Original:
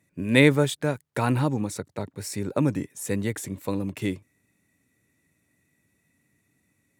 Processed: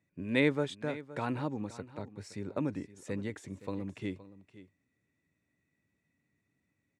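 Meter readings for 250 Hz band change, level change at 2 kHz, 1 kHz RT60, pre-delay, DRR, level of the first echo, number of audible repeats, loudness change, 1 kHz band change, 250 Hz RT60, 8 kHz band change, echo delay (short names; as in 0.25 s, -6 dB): -9.5 dB, -10.0 dB, none, none, none, -16.5 dB, 1, -10.0 dB, -9.5 dB, none, -19.0 dB, 0.518 s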